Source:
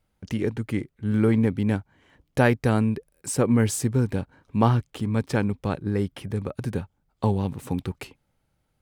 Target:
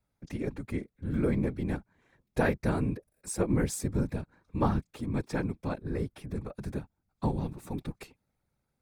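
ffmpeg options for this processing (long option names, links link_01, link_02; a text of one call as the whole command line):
ffmpeg -i in.wav -af "bandreject=frequency=3000:width=6,afftfilt=real='hypot(re,im)*cos(2*PI*random(0))':imag='hypot(re,im)*sin(2*PI*random(1))':win_size=512:overlap=0.75,volume=-1.5dB" out.wav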